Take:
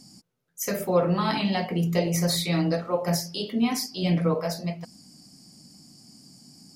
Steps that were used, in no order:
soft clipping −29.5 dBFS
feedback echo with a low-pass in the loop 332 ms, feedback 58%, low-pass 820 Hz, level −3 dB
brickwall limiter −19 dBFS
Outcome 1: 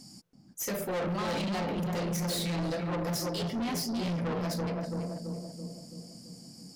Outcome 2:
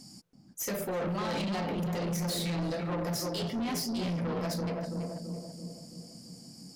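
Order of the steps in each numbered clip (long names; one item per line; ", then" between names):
feedback echo with a low-pass in the loop, then soft clipping, then brickwall limiter
brickwall limiter, then feedback echo with a low-pass in the loop, then soft clipping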